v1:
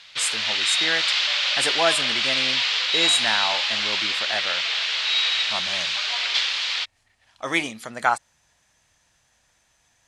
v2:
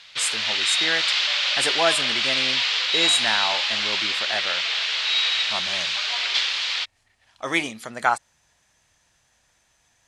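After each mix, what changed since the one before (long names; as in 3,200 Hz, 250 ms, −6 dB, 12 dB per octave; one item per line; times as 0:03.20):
master: add parametric band 390 Hz +2.5 dB 0.2 octaves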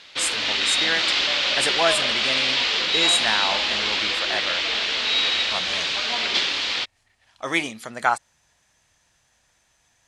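background: remove Bessel high-pass filter 1,100 Hz, order 2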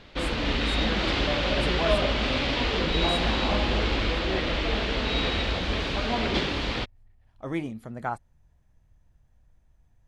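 speech −11.0 dB
master: remove meter weighting curve ITU-R 468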